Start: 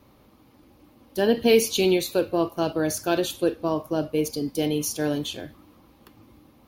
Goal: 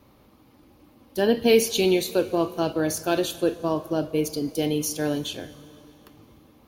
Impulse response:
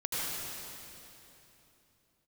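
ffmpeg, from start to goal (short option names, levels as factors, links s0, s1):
-filter_complex "[0:a]asplit=2[s0][s1];[1:a]atrim=start_sample=2205,adelay=25[s2];[s1][s2]afir=irnorm=-1:irlink=0,volume=0.0596[s3];[s0][s3]amix=inputs=2:normalize=0"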